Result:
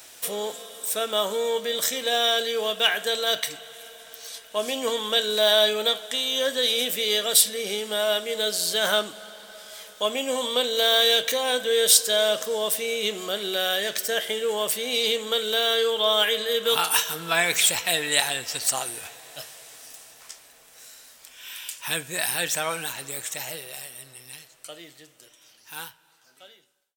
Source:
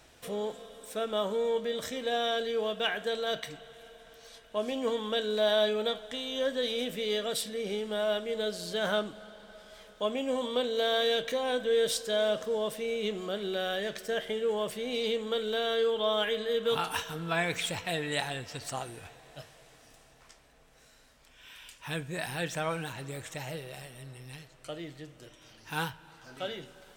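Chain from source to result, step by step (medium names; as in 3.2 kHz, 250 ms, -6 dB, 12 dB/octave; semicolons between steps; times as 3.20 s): fade out at the end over 5.20 s; RIAA curve recording; trim +6.5 dB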